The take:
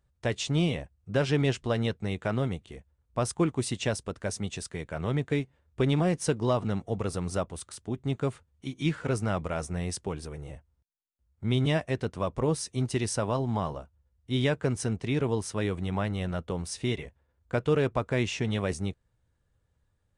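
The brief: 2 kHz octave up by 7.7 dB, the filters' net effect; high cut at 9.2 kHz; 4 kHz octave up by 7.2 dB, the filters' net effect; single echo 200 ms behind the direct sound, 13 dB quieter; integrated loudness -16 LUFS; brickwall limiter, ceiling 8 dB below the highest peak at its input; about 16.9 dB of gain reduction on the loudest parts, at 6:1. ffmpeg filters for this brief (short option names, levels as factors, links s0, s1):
-af "lowpass=9200,equalizer=f=2000:t=o:g=8,equalizer=f=4000:t=o:g=6.5,acompressor=threshold=0.0112:ratio=6,alimiter=level_in=2.37:limit=0.0631:level=0:latency=1,volume=0.422,aecho=1:1:200:0.224,volume=23.7"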